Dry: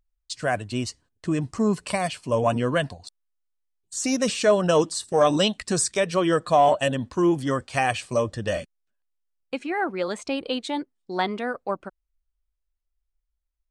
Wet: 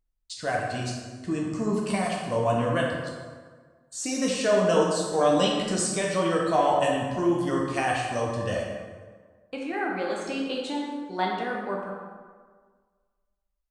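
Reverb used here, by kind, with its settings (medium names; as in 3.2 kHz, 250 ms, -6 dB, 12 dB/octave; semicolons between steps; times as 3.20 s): plate-style reverb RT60 1.6 s, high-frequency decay 0.6×, DRR -3 dB; trim -6.5 dB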